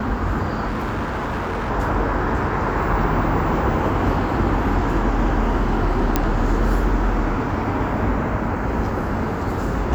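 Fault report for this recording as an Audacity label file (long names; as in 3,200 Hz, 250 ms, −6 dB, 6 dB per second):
0.670000	1.710000	clipping −20.5 dBFS
6.160000	6.160000	click −3 dBFS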